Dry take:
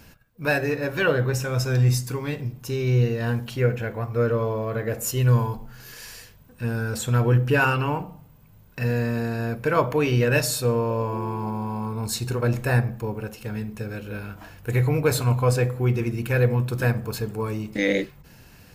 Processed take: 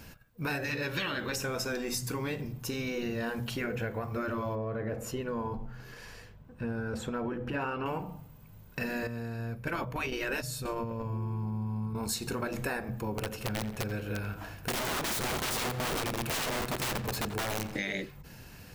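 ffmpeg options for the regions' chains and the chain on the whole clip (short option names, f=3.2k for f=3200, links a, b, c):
-filter_complex "[0:a]asettb=1/sr,asplit=3[a][b][c];[a]atrim=end=0.644[d];[b]atrim=start=0.64:end=1.36,asetpts=PTS-STARTPTS,afade=t=in:d=0.004:c=qsin,afade=t=out:st=0.716:d=0.004:c=qsin,equalizer=f=3.5k:t=o:w=1.4:g=10.5,bandreject=f=700:w=7.9[e];[c]atrim=start=1.356[f];[d][e]acrossfade=d=0.004:c1=hsin:c2=qsin[g];[g][f]acrossfade=d=0.004:c1=qsin:c2=hsin,asettb=1/sr,asplit=3[h][i][j];[h]atrim=end=4.554[k];[i]atrim=start=4.55:end=7.86,asetpts=PTS-STARTPTS,afade=t=in:d=0.004:c=qsin,afade=t=out:st=3.306:d=0.004:c=qsin,lowpass=f=1.3k:p=1,acompressor=threshold=-25dB:ratio=1.5:attack=3.2:release=140:knee=1:detection=peak[l];[j]atrim=start=7.856[m];[k][l]acrossfade=d=0.004:c1=hsin:c2=qsin[n];[n][m]acrossfade=d=0.004:c1=qsin:c2=hsin,asettb=1/sr,asplit=3[o][p][q];[o]atrim=end=9.074[r];[p]atrim=start=9.07:end=11.95,asetpts=PTS-STARTPTS,afade=t=in:d=0.004:c=qsin,afade=t=out:st=2.876:d=0.004:c=qsin,agate=range=-11dB:threshold=-23dB:ratio=16:release=100:detection=peak,asubboost=boost=7.5:cutoff=210[s];[q]atrim=start=11.946[t];[r][s]acrossfade=d=0.004:c1=hsin:c2=qsin[u];[u][t]acrossfade=d=0.004:c1=qsin:c2=hsin,asettb=1/sr,asplit=3[v][w][x];[v]atrim=end=13.124[y];[w]atrim=start=13.12:end=17.76,asetpts=PTS-STARTPTS,afade=t=in:d=0.004:c=qsin,afade=t=out:st=4.636:d=0.004:c=qsin,aeval=exprs='(mod(13.3*val(0)+1,2)-1)/13.3':c=same,asplit=2[z][aa];[aa]adelay=87,lowpass=f=4.2k:p=1,volume=-13dB,asplit=2[ab][ac];[ac]adelay=87,lowpass=f=4.2k:p=1,volume=0.55,asplit=2[ad][ae];[ae]adelay=87,lowpass=f=4.2k:p=1,volume=0.55,asplit=2[af][ag];[ag]adelay=87,lowpass=f=4.2k:p=1,volume=0.55,asplit=2[ah][ai];[ai]adelay=87,lowpass=f=4.2k:p=1,volume=0.55,asplit=2[aj][ak];[ak]adelay=87,lowpass=f=4.2k:p=1,volume=0.55[al];[z][ab][ad][af][ah][aj][al]amix=inputs=7:normalize=0,atrim=end_sample=204624[am];[x]atrim=start=17.756[an];[y][am]acrossfade=d=0.004:c1=hsin:c2=qsin[ao];[ao][an]acrossfade=d=0.004:c1=qsin:c2=hsin,afftfilt=real='re*lt(hypot(re,im),0.355)':imag='im*lt(hypot(re,im),0.355)':win_size=1024:overlap=0.75,acompressor=threshold=-30dB:ratio=6"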